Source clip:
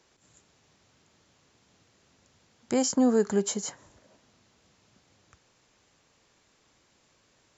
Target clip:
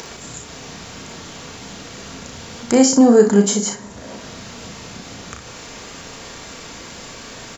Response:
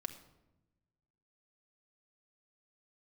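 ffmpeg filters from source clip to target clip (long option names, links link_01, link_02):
-filter_complex "[0:a]acompressor=mode=upward:threshold=-31dB:ratio=2.5,aecho=1:1:34|60:0.531|0.316,asplit=2[link_01][link_02];[1:a]atrim=start_sample=2205[link_03];[link_02][link_03]afir=irnorm=-1:irlink=0,volume=6dB[link_04];[link_01][link_04]amix=inputs=2:normalize=0,volume=2.5dB"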